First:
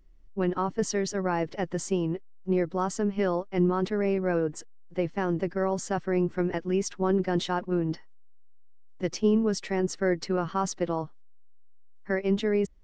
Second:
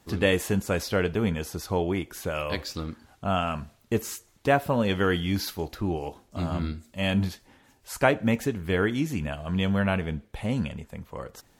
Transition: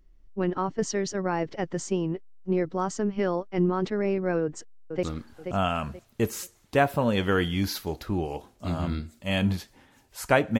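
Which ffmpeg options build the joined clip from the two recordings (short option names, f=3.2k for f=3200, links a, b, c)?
-filter_complex "[0:a]apad=whole_dur=10.59,atrim=end=10.59,atrim=end=5.032[a];[1:a]atrim=start=2.748:end=8.31[b];[a][b]acrossfade=d=0.004:c1=hsin:c2=hsin,asplit=2[c][d];[d]afade=t=in:st=4.42:d=0.01,afade=t=out:st=5.03:d=0.01,aecho=0:1:480|960|1440|1920:0.446684|0.134005|0.0402015|0.0120605[e];[c][e]amix=inputs=2:normalize=0"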